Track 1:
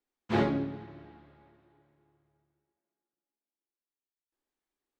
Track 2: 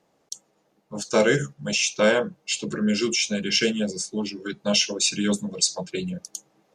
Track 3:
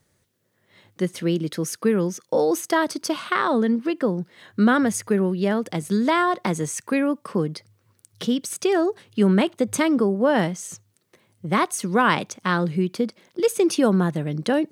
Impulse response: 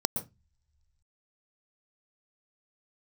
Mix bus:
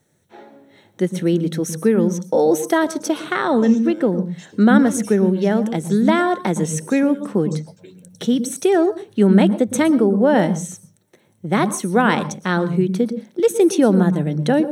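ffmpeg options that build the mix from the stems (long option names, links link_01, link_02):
-filter_complex "[0:a]highpass=470,volume=-17.5dB,asplit=2[link_01][link_02];[link_02]volume=-7.5dB[link_03];[1:a]acompressor=threshold=-26dB:ratio=6,adelay=1900,volume=-18dB,asplit=2[link_04][link_05];[link_05]volume=-8dB[link_06];[2:a]volume=-0.5dB,asplit=2[link_07][link_08];[link_08]volume=-11dB[link_09];[3:a]atrim=start_sample=2205[link_10];[link_03][link_06][link_09]amix=inputs=3:normalize=0[link_11];[link_11][link_10]afir=irnorm=-1:irlink=0[link_12];[link_01][link_04][link_07][link_12]amix=inputs=4:normalize=0"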